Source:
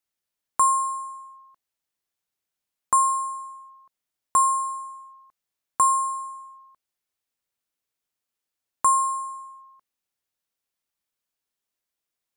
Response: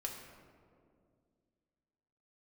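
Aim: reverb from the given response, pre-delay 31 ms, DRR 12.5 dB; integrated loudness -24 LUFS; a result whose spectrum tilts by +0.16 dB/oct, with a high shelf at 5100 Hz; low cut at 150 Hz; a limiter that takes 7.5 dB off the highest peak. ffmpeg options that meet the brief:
-filter_complex "[0:a]highpass=150,highshelf=f=5.1k:g=-5.5,alimiter=limit=-19dB:level=0:latency=1,asplit=2[a][b];[1:a]atrim=start_sample=2205,adelay=31[c];[b][c]afir=irnorm=-1:irlink=0,volume=-12dB[d];[a][d]amix=inputs=2:normalize=0,volume=3.5dB"

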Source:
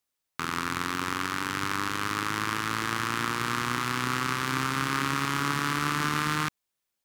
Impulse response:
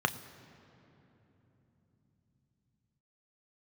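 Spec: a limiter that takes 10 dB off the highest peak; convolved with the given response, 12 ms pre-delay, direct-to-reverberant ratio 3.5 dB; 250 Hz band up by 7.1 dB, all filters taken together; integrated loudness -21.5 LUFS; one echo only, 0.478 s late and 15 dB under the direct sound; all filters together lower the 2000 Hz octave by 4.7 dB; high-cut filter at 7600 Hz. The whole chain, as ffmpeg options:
-filter_complex "[0:a]lowpass=7.6k,equalizer=f=250:t=o:g=8.5,equalizer=f=2k:t=o:g=-6.5,alimiter=limit=-21dB:level=0:latency=1,aecho=1:1:478:0.178,asplit=2[a][b];[1:a]atrim=start_sample=2205,adelay=12[c];[b][c]afir=irnorm=-1:irlink=0,volume=-13dB[d];[a][d]amix=inputs=2:normalize=0,volume=11dB"

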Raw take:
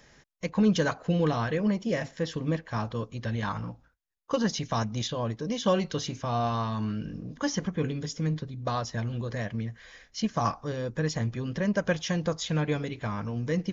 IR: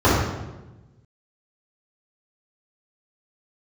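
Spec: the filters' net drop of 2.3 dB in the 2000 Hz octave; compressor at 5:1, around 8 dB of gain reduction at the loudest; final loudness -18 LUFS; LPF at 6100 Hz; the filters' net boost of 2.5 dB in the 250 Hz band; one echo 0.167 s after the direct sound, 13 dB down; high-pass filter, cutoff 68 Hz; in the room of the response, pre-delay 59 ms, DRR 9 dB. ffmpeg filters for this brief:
-filter_complex "[0:a]highpass=68,lowpass=6.1k,equalizer=f=250:t=o:g=3.5,equalizer=f=2k:t=o:g=-3,acompressor=threshold=-25dB:ratio=5,aecho=1:1:167:0.224,asplit=2[a][b];[1:a]atrim=start_sample=2205,adelay=59[c];[b][c]afir=irnorm=-1:irlink=0,volume=-33.5dB[d];[a][d]amix=inputs=2:normalize=0,volume=11.5dB"

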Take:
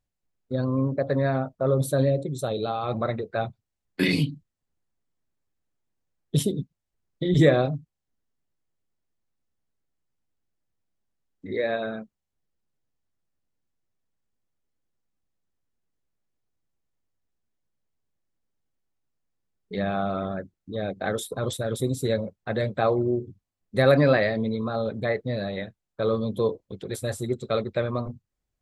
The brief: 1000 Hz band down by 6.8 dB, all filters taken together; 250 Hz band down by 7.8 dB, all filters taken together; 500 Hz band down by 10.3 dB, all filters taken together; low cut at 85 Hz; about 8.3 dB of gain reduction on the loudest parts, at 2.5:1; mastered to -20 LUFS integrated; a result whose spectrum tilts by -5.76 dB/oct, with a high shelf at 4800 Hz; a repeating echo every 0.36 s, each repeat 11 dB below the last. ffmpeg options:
-af "highpass=85,equalizer=f=250:t=o:g=-8,equalizer=f=500:t=o:g=-9,equalizer=f=1k:t=o:g=-5,highshelf=f=4.8k:g=-6,acompressor=threshold=-32dB:ratio=2.5,aecho=1:1:360|720|1080:0.282|0.0789|0.0221,volume=17dB"

